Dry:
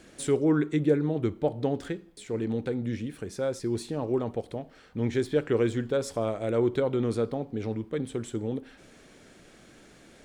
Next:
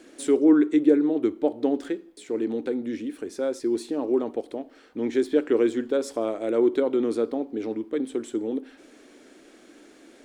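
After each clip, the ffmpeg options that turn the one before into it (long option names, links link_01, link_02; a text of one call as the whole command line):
ffmpeg -i in.wav -af "lowshelf=frequency=200:width_type=q:width=3:gain=-12.5" out.wav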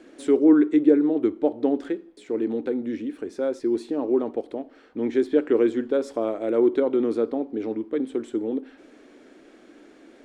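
ffmpeg -i in.wav -af "lowpass=frequency=2400:poles=1,volume=1.5dB" out.wav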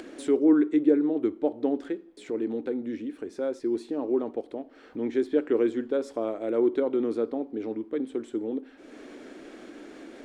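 ffmpeg -i in.wav -af "acompressor=mode=upward:threshold=-30dB:ratio=2.5,volume=-4dB" out.wav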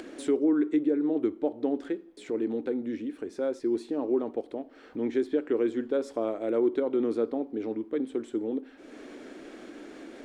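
ffmpeg -i in.wav -af "alimiter=limit=-16.5dB:level=0:latency=1:release=227" out.wav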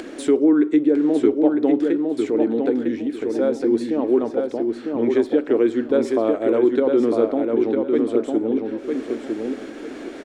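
ffmpeg -i in.wav -filter_complex "[0:a]asplit=2[link_01][link_02];[link_02]adelay=953,lowpass=frequency=4200:poles=1,volume=-4dB,asplit=2[link_03][link_04];[link_04]adelay=953,lowpass=frequency=4200:poles=1,volume=0.26,asplit=2[link_05][link_06];[link_06]adelay=953,lowpass=frequency=4200:poles=1,volume=0.26,asplit=2[link_07][link_08];[link_08]adelay=953,lowpass=frequency=4200:poles=1,volume=0.26[link_09];[link_01][link_03][link_05][link_07][link_09]amix=inputs=5:normalize=0,volume=8.5dB" out.wav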